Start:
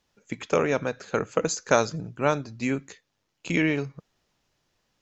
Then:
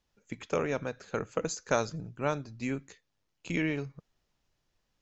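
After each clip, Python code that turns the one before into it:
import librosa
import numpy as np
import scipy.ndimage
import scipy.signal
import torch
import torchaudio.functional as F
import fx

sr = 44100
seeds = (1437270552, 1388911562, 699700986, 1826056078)

y = fx.low_shelf(x, sr, hz=70.0, db=11.5)
y = F.gain(torch.from_numpy(y), -7.5).numpy()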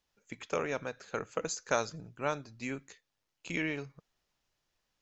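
y = fx.low_shelf(x, sr, hz=410.0, db=-8.0)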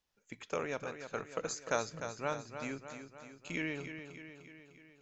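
y = fx.echo_feedback(x, sr, ms=301, feedback_pct=58, wet_db=-9.0)
y = F.gain(torch.from_numpy(y), -3.5).numpy()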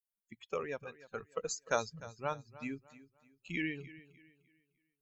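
y = fx.bin_expand(x, sr, power=2.0)
y = F.gain(torch.from_numpy(y), 3.5).numpy()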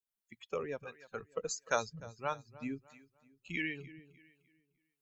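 y = fx.harmonic_tremolo(x, sr, hz=1.5, depth_pct=50, crossover_hz=600.0)
y = F.gain(torch.from_numpy(y), 2.0).numpy()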